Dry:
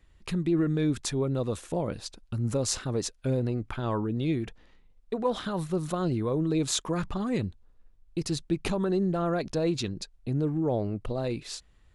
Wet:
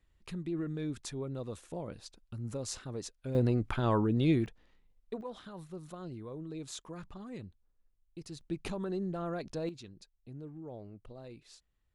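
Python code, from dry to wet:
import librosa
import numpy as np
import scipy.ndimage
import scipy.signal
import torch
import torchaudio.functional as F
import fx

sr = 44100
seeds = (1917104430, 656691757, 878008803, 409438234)

y = fx.gain(x, sr, db=fx.steps((0.0, -10.5), (3.35, 1.0), (4.46, -8.0), (5.21, -15.5), (8.41, -9.0), (9.69, -18.0)))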